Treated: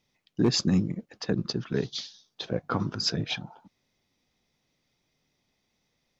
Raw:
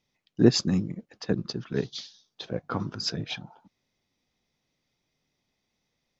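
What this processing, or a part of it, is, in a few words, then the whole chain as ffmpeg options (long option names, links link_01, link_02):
clipper into limiter: -af "asoftclip=type=hard:threshold=-10.5dB,alimiter=limit=-18dB:level=0:latency=1:release=54,volume=3dB"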